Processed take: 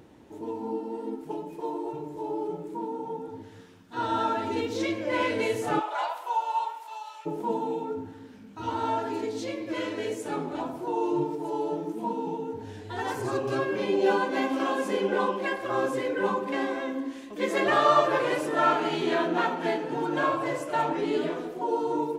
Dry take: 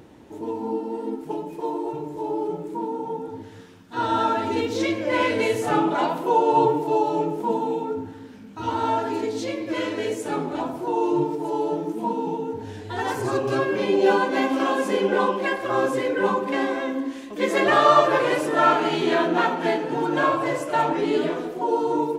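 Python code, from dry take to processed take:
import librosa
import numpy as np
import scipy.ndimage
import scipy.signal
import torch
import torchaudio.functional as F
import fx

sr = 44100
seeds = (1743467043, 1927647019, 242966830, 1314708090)

y = fx.highpass(x, sr, hz=fx.line((5.79, 570.0), (7.25, 1300.0)), slope=24, at=(5.79, 7.25), fade=0.02)
y = y * 10.0 ** (-5.0 / 20.0)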